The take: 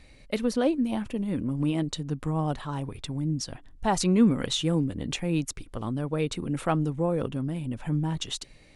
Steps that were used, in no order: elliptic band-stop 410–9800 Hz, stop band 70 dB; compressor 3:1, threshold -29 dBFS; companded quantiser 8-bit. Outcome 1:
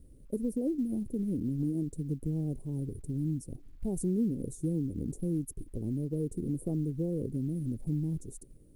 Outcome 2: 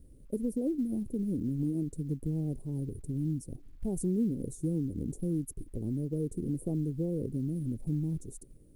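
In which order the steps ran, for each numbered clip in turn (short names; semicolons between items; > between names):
elliptic band-stop > companded quantiser > compressor; elliptic band-stop > compressor > companded quantiser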